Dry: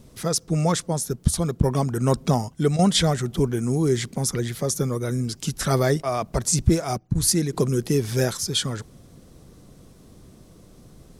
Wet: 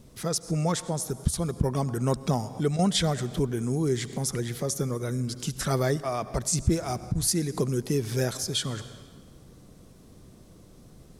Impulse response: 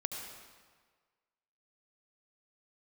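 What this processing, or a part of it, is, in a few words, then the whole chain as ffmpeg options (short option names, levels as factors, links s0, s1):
ducked reverb: -filter_complex "[0:a]asplit=3[s0][s1][s2];[1:a]atrim=start_sample=2205[s3];[s1][s3]afir=irnorm=-1:irlink=0[s4];[s2]apad=whole_len=493775[s5];[s4][s5]sidechaincompress=threshold=0.0398:ratio=8:attack=16:release=207,volume=0.473[s6];[s0][s6]amix=inputs=2:normalize=0,volume=0.501"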